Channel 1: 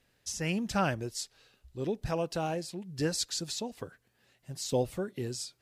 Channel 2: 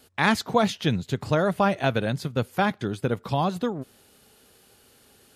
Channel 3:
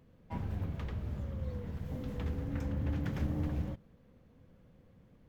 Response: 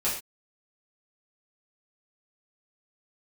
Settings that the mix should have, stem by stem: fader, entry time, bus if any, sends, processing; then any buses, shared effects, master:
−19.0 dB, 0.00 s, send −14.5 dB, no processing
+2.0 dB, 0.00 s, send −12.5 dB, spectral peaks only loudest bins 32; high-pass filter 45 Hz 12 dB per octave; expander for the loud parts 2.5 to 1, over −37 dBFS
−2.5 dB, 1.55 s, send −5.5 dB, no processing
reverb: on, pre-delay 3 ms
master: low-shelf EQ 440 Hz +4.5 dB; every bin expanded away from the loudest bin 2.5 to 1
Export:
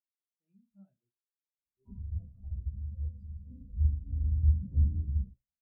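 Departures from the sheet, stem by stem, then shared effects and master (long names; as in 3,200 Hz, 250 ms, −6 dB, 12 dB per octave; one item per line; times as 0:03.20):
stem 1: send −14.5 dB → −5.5 dB
stem 2: muted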